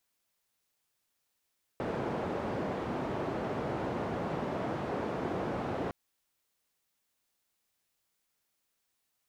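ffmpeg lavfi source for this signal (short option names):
-f lavfi -i "anoisesrc=c=white:d=4.11:r=44100:seed=1,highpass=f=99,lowpass=f=630,volume=-14dB"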